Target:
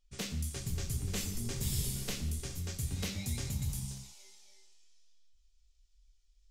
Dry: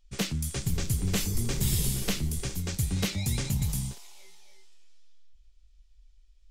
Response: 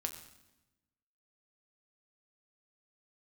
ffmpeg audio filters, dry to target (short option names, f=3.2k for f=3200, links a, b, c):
-filter_complex "[0:a]asetnsamples=n=441:p=0,asendcmd='3.88 equalizer g 9.5',equalizer=f=6.4k:t=o:w=1.6:g=3[a];[1:a]atrim=start_sample=2205,afade=t=out:st=0.26:d=0.01,atrim=end_sample=11907[b];[a][b]afir=irnorm=-1:irlink=0,volume=-8.5dB"